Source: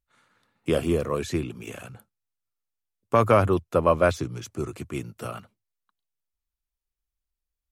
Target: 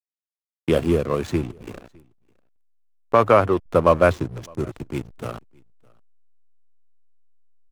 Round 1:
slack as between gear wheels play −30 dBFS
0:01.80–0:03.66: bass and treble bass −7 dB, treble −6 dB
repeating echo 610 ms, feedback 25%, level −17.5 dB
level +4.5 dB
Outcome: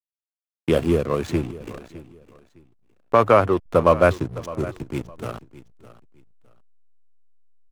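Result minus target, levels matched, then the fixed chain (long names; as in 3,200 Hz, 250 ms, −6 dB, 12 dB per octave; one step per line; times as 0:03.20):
echo-to-direct +11 dB
slack as between gear wheels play −30 dBFS
0:01.80–0:03.66: bass and treble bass −7 dB, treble −6 dB
repeating echo 610 ms, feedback 25%, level −28.5 dB
level +4.5 dB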